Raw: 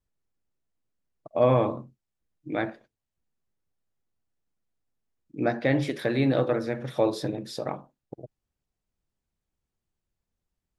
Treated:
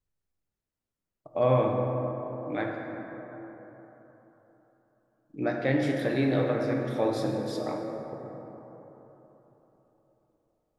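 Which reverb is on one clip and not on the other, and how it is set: plate-style reverb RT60 4 s, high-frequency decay 0.35×, DRR 0.5 dB; trim -4 dB

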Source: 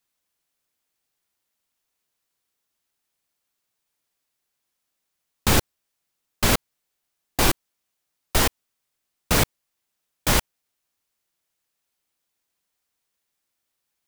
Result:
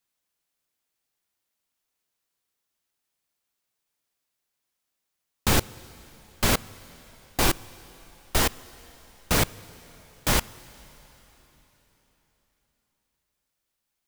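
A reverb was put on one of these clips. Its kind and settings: plate-style reverb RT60 4.1 s, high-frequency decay 1×, DRR 19 dB; trim -2.5 dB

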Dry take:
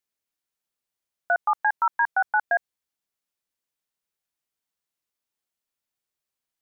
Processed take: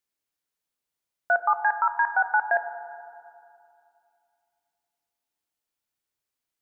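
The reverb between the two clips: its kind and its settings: FDN reverb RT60 2.5 s, low-frequency decay 1.2×, high-frequency decay 0.25×, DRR 8.5 dB

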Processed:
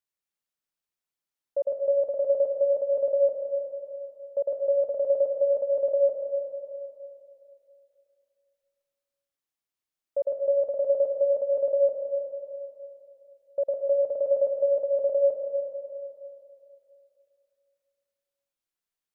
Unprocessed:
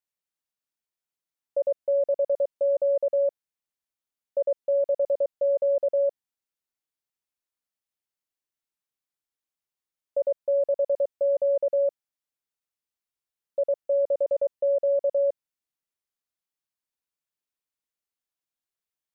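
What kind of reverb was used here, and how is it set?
algorithmic reverb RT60 2.7 s, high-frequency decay 0.75×, pre-delay 85 ms, DRR 2 dB; trim -1.5 dB

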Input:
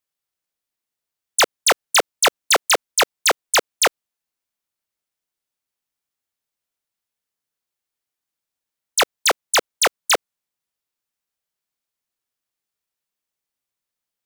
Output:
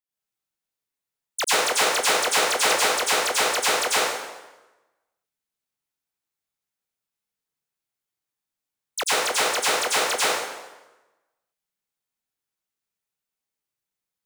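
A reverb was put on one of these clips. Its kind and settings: plate-style reverb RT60 1.1 s, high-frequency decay 0.8×, pre-delay 80 ms, DRR -9 dB; trim -11.5 dB

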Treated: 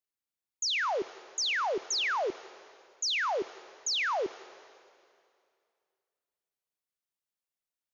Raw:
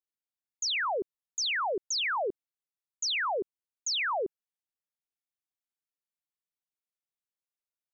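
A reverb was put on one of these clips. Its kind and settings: plate-style reverb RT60 2.4 s, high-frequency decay 0.95×, DRR 15.5 dB

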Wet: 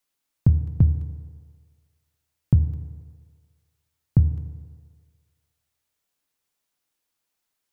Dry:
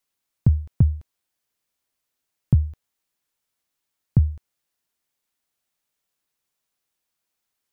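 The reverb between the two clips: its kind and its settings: FDN reverb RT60 1.8 s, low-frequency decay 0.75×, high-frequency decay 0.75×, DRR 9 dB

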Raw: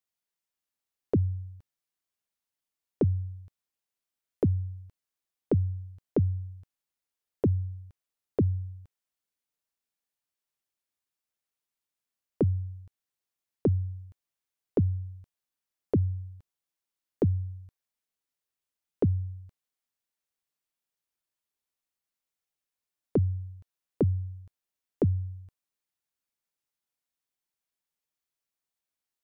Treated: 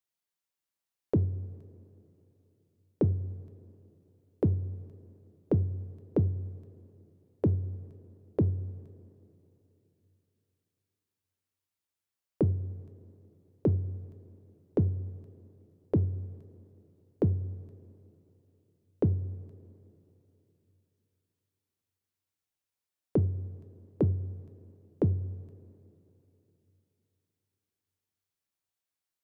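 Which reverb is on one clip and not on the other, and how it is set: two-slope reverb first 0.27 s, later 3.3 s, from -17 dB, DRR 10.5 dB; trim -1.5 dB

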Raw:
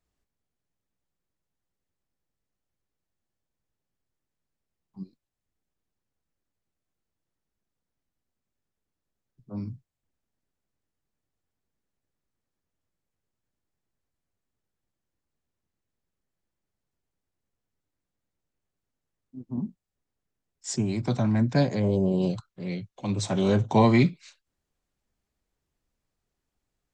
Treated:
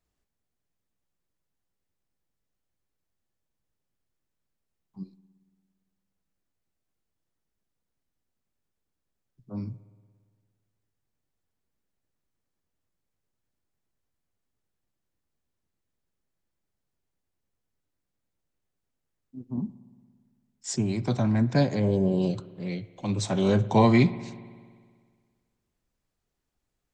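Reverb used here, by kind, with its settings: spring tank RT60 1.8 s, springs 57 ms, chirp 65 ms, DRR 16.5 dB

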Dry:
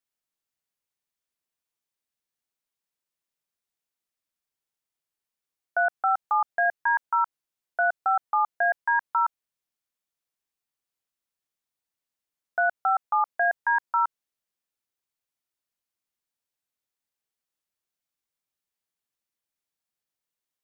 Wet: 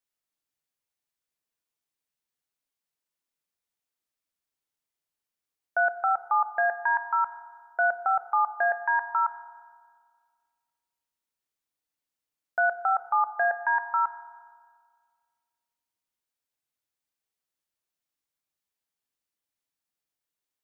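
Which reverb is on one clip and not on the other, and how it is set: FDN reverb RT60 1.8 s, low-frequency decay 1.2×, high-frequency decay 0.6×, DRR 11 dB; trim -1 dB

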